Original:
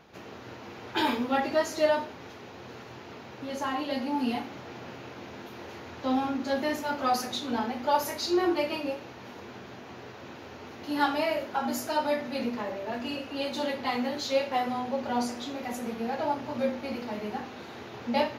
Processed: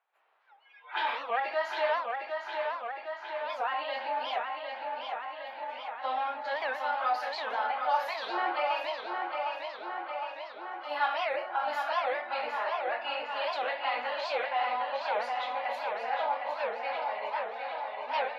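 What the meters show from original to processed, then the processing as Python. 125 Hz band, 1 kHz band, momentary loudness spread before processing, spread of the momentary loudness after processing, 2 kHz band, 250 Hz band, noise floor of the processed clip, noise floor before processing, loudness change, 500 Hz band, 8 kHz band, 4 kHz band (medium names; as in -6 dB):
under -30 dB, +1.5 dB, 18 LU, 8 LU, +2.5 dB, -22.5 dB, -48 dBFS, -45 dBFS, -2.5 dB, -3.5 dB, under -15 dB, -3.0 dB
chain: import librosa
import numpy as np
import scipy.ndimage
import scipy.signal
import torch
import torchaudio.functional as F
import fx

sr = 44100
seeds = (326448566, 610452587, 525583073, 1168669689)

p1 = fx.noise_reduce_blind(x, sr, reduce_db=28)
p2 = scipy.signal.sosfilt(scipy.signal.butter(4, 740.0, 'highpass', fs=sr, output='sos'), p1)
p3 = fx.dynamic_eq(p2, sr, hz=1000.0, q=1.1, threshold_db=-42.0, ratio=4.0, max_db=-4)
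p4 = fx.over_compress(p3, sr, threshold_db=-39.0, ratio=-1.0)
p5 = p3 + (p4 * 10.0 ** (-3.0 / 20.0))
p6 = fx.air_absorb(p5, sr, metres=450.0)
p7 = p6 + fx.echo_tape(p6, sr, ms=759, feedback_pct=76, wet_db=-4.0, lp_hz=5000.0, drive_db=19.0, wow_cents=11, dry=0)
p8 = fx.record_warp(p7, sr, rpm=78.0, depth_cents=250.0)
y = p8 * 10.0 ** (3.5 / 20.0)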